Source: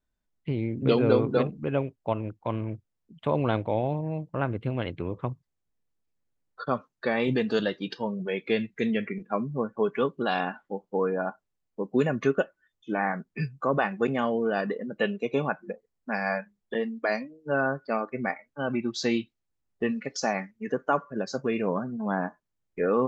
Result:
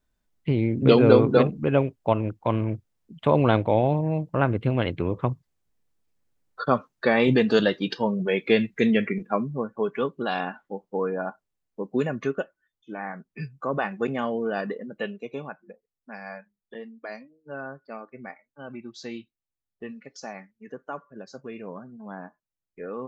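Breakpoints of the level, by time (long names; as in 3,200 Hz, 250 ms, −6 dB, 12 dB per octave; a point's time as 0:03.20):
0:09.16 +6 dB
0:09.64 −0.5 dB
0:11.92 −0.5 dB
0:12.95 −7.5 dB
0:13.88 −1 dB
0:14.71 −1 dB
0:15.61 −10.5 dB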